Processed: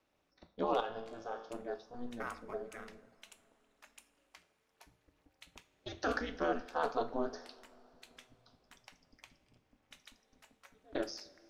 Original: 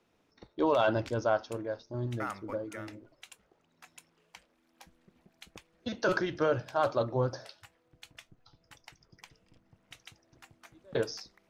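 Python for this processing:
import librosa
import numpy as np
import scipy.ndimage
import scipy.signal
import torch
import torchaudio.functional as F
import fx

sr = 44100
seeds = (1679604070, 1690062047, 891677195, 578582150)

y = fx.peak_eq(x, sr, hz=260.0, db=-12.0, octaves=0.44)
y = y * np.sin(2.0 * np.pi * 120.0 * np.arange(len(y)) / sr)
y = fx.comb_fb(y, sr, f0_hz=56.0, decay_s=0.84, harmonics='all', damping=0.0, mix_pct=80, at=(0.8, 1.49))
y = fx.rev_double_slope(y, sr, seeds[0], early_s=0.38, late_s=3.9, knee_db=-19, drr_db=9.5)
y = y * 10.0 ** (-2.5 / 20.0)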